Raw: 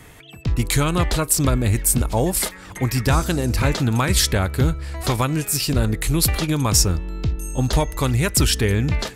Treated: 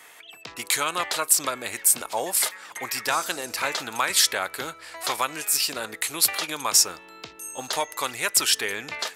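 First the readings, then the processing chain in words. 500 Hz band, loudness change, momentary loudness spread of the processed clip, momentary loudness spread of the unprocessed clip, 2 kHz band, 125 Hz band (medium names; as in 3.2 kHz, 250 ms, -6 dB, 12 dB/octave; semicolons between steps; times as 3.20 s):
-8.0 dB, -3.0 dB, 16 LU, 7 LU, 0.0 dB, -31.0 dB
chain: high-pass 750 Hz 12 dB/octave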